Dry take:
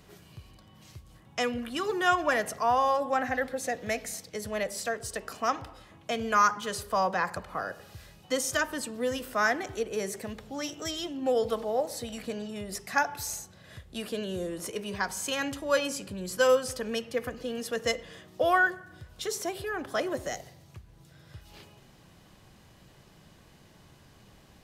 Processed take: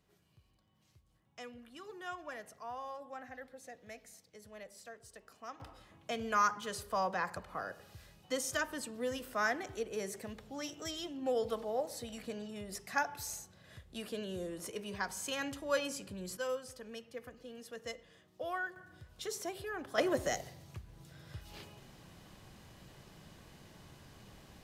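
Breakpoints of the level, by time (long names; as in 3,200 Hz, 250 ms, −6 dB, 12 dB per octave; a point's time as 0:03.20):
−19 dB
from 0:05.60 −7 dB
from 0:16.37 −15 dB
from 0:18.76 −7.5 dB
from 0:19.98 0 dB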